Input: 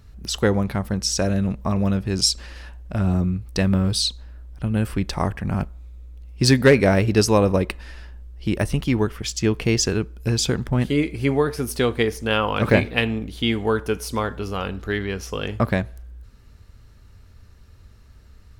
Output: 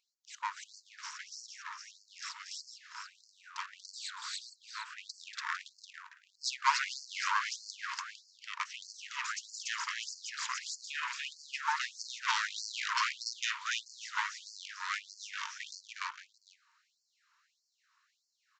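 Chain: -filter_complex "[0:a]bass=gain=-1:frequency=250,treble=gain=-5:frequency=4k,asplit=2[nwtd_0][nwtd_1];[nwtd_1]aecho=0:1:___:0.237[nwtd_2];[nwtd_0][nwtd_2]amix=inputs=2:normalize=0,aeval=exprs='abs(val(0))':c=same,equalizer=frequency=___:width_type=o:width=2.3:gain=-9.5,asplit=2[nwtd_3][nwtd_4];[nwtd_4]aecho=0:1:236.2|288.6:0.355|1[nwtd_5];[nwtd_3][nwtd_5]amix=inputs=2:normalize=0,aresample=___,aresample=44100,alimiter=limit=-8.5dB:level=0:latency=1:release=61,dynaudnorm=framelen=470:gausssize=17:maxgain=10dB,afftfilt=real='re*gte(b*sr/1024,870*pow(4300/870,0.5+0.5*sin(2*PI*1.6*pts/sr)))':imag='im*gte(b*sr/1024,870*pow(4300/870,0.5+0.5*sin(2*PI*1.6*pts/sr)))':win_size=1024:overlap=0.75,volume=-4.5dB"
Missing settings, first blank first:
453, 3.2k, 16000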